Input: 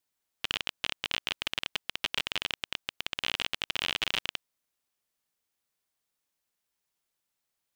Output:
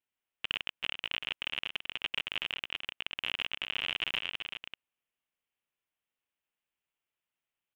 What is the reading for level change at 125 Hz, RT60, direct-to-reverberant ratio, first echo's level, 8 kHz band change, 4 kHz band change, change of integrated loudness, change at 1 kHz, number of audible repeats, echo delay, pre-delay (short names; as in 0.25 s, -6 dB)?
-6.0 dB, none, none, -7.5 dB, -15.5 dB, -2.5 dB, -2.5 dB, -5.0 dB, 1, 0.384 s, none